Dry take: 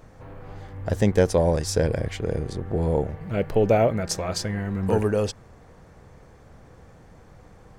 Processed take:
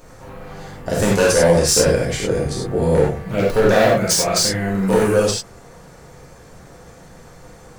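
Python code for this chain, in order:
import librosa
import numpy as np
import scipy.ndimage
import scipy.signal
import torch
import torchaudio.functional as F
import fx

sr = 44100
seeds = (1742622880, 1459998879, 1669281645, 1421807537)

y = fx.bass_treble(x, sr, bass_db=-3, treble_db=8)
y = 10.0 ** (-15.5 / 20.0) * (np.abs((y / 10.0 ** (-15.5 / 20.0) + 3.0) % 4.0 - 2.0) - 1.0)
y = fx.rev_gated(y, sr, seeds[0], gate_ms=120, shape='flat', drr_db=-5.0)
y = F.gain(torch.from_numpy(y), 3.0).numpy()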